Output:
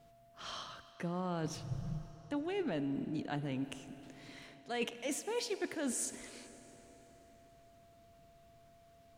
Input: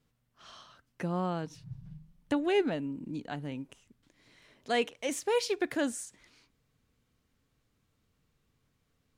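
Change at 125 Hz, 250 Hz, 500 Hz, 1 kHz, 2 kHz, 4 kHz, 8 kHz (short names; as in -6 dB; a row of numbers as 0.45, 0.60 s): -1.0, -4.0, -8.0, -7.0, -6.5, -4.5, +0.5 dB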